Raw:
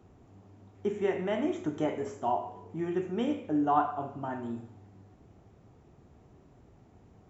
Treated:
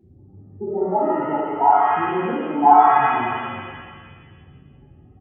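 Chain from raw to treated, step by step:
adaptive Wiener filter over 41 samples
in parallel at 0 dB: downward compressor, threshold −40 dBFS, peak gain reduction 18 dB
on the sum: tempo change 1.4×
low-pass with resonance 870 Hz, resonance Q 10
spectral peaks only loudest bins 8
reverb with rising layers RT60 1.6 s, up +7 semitones, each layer −8 dB, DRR −7 dB
level −2.5 dB

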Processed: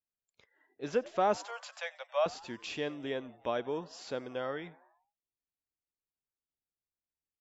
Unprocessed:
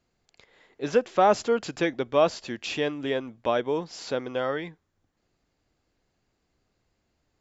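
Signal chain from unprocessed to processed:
0:01.37–0:02.26: Butterworth high-pass 530 Hz 96 dB per octave
on a send: echo with shifted repeats 91 ms, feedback 62%, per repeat +96 Hz, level −22 dB
on the sum: noise reduction from a noise print of the clip's start 23 dB
level −8.5 dB

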